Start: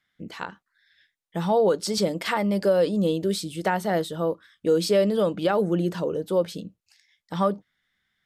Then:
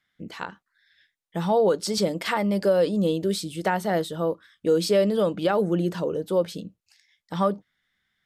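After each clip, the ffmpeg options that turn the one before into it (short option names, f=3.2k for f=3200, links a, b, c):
-af anull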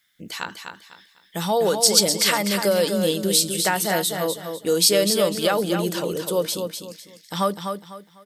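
-filter_complex "[0:a]crystalizer=i=7:c=0,asplit=2[a][b];[b]aecho=0:1:250|500|750|1000:0.473|0.137|0.0398|0.0115[c];[a][c]amix=inputs=2:normalize=0,volume=-1.5dB"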